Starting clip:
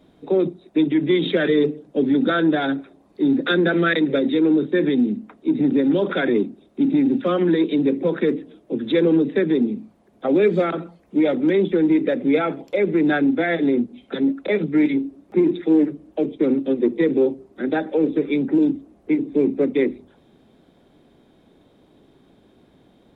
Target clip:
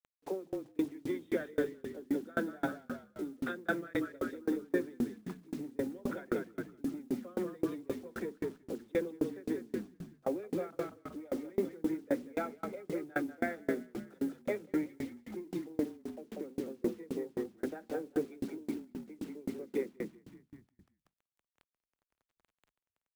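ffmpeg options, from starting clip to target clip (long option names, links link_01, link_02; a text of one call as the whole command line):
ffmpeg -i in.wav -filter_complex "[0:a]lowpass=1600,equalizer=frequency=100:width=0.34:gain=-10.5,bandreject=frequency=50:width_type=h:width=6,bandreject=frequency=100:width_type=h:width=6,asplit=2[link_01][link_02];[link_02]acompressor=threshold=-38dB:ratio=5,volume=3dB[link_03];[link_01][link_03]amix=inputs=2:normalize=0,acrusher=bits=6:mix=0:aa=0.000001,asplit=7[link_04][link_05][link_06][link_07][link_08][link_09][link_10];[link_05]adelay=189,afreqshift=-32,volume=-6dB[link_11];[link_06]adelay=378,afreqshift=-64,volume=-11.7dB[link_12];[link_07]adelay=567,afreqshift=-96,volume=-17.4dB[link_13];[link_08]adelay=756,afreqshift=-128,volume=-23dB[link_14];[link_09]adelay=945,afreqshift=-160,volume=-28.7dB[link_15];[link_10]adelay=1134,afreqshift=-192,volume=-34.4dB[link_16];[link_04][link_11][link_12][link_13][link_14][link_15][link_16]amix=inputs=7:normalize=0,aeval=exprs='val(0)*pow(10,-32*if(lt(mod(3.8*n/s,1),2*abs(3.8)/1000),1-mod(3.8*n/s,1)/(2*abs(3.8)/1000),(mod(3.8*n/s,1)-2*abs(3.8)/1000)/(1-2*abs(3.8)/1000))/20)':channel_layout=same,volume=-7dB" out.wav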